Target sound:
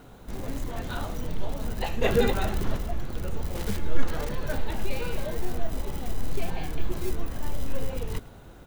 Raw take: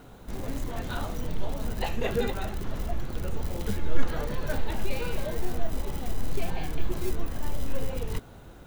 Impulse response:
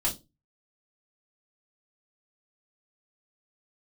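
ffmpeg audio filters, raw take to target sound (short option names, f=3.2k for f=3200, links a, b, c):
-filter_complex "[0:a]asettb=1/sr,asplit=3[a][b][c];[a]atrim=end=2.024[d];[b]atrim=start=2.02:end=2.77,asetpts=PTS-STARTPTS,afade=t=in:d=0.004:c=qsin,afade=t=out:st=0.746:d=0.004:c=qsin,acontrast=35[e];[c]atrim=start=2.766[f];[d][e]acrossfade=d=0.004:c1=hsin:c2=qsin[g];[g][f]acrossfade=d=0.004:c1=qsin:c2=hsin,asettb=1/sr,asplit=3[h][i][j];[h]atrim=end=3.554[k];[i]atrim=start=3.55:end=4.29,asetpts=PTS-STARTPTS,afade=t=in:d=0.004:c=qsin,afade=t=out:st=0.736:d=0.004:c=qsin,acrusher=bits=7:dc=4:mix=0:aa=0.000001[l];[j]atrim=start=4.286[m];[k][l]acrossfade=d=0.004:c1=hsin:c2=qsin[n];[n][m]acrossfade=d=0.004:c1=qsin:c2=hsin,aecho=1:1:106:0.0944"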